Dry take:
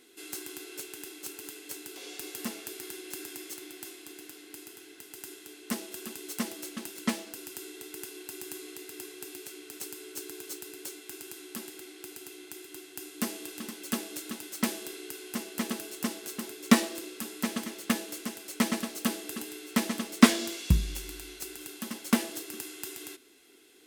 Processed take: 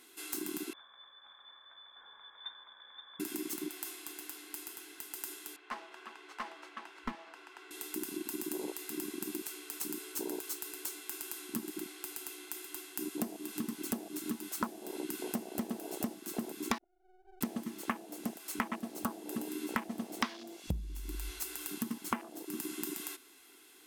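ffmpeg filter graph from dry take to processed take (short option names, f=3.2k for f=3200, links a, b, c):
-filter_complex "[0:a]asettb=1/sr,asplit=3[a][b][c];[a]atrim=end=0.734[d];[b]atrim=start=0.73:end=3.2,asetpts=PTS-STARTPTS,afade=t=in:d=0.004:c=qsin,afade=t=out:st=2.466:d=0.004:c=qsin,asplit=3[e][f][g];[e]bandpass=f=270:t=q:w=8,volume=0dB[h];[f]bandpass=f=2.29k:t=q:w=8,volume=-6dB[i];[g]bandpass=f=3.01k:t=q:w=8,volume=-9dB[j];[h][i][j]amix=inputs=3:normalize=0,aecho=1:1:523:0.398,atrim=end_sample=108927,lowpass=f=3.2k:t=q:w=0.5098,lowpass=f=3.2k:t=q:w=0.6013,lowpass=f=3.2k:t=q:w=0.9,lowpass=f=3.2k:t=q:w=2.563,afreqshift=-3800[k];[c]atrim=start=3.196[l];[d][k]acrossfade=d=0.004:c1=hsin:c2=qsin[m];[m][l]acrossfade=d=0.004:c1=qsin:c2=hsin,asettb=1/sr,asplit=3[n][o][p];[n]atrim=end=5.564[q];[o]atrim=start=5.56:end=7.71,asetpts=PTS-STARTPTS,afade=t=in:d=0.004:c=qsin,afade=t=out:st=2.146:d=0.004:c=qsin,highpass=570,lowpass=2.1k,aeval=exprs='clip(val(0),-1,0.0158)':c=same[r];[p]atrim=start=7.706[s];[q][r]acrossfade=d=0.004:c1=hsin:c2=qsin[t];[t][s]acrossfade=d=0.004:c1=qsin:c2=hsin,asettb=1/sr,asplit=3[u][v][w];[u]atrim=end=16.784[x];[v]atrim=start=16.78:end=17.41,asetpts=PTS-STARTPTS,afade=t=in:d=0.004:c=qsin,afade=t=out:st=0.626:d=0.004:c=qsin,asuperpass=centerf=370:order=12:qfactor=6.7,aeval=exprs='max(val(0),0)':c=same[y];[w]atrim=start=17.406[z];[x][y]acrossfade=d=0.004:c1=hsin:c2=qsin[aa];[aa][z]acrossfade=d=0.004:c1=qsin:c2=hsin,afwtdn=0.02,equalizer=f=125:t=o:w=1:g=-7,equalizer=f=500:t=o:w=1:g=-7,equalizer=f=1k:t=o:w=1:g=9,equalizer=f=16k:t=o:w=1:g=7,acompressor=threshold=-49dB:ratio=10,volume=15.5dB"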